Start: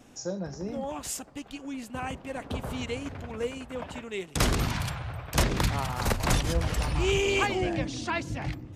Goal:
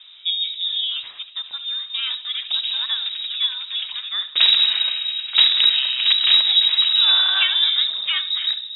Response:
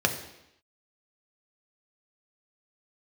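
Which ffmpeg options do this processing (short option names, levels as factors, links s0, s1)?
-filter_complex "[0:a]lowpass=f=3300:t=q:w=0.5098,lowpass=f=3300:t=q:w=0.6013,lowpass=f=3300:t=q:w=0.9,lowpass=f=3300:t=q:w=2.563,afreqshift=-3900,asplit=2[s0][s1];[1:a]atrim=start_sample=2205,adelay=67[s2];[s1][s2]afir=irnorm=-1:irlink=0,volume=0.0596[s3];[s0][s3]amix=inputs=2:normalize=0,crystalizer=i=9.5:c=0,volume=0.596"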